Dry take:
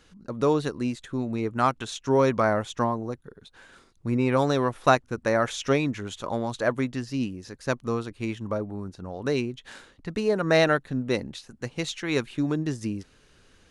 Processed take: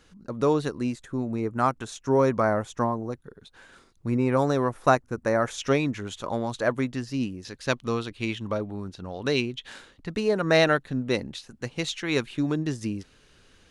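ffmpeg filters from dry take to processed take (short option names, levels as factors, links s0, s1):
-af "asetnsamples=n=441:p=0,asendcmd='0.96 equalizer g -8;3.1 equalizer g -0.5;4.16 equalizer g -7.5;5.58 equalizer g 0;7.45 equalizer g 9.5;9.67 equalizer g 2.5',equalizer=f=3300:t=o:w=1.2:g=-1.5"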